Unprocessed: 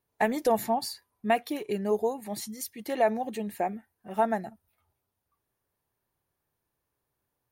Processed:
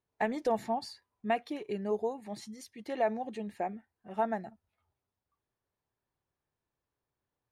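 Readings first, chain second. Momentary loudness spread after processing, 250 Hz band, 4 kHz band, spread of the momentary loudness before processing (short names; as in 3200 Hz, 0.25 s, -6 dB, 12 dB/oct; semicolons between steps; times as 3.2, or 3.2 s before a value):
13 LU, -5.0 dB, -7.5 dB, 10 LU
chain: air absorption 78 m; gain -5 dB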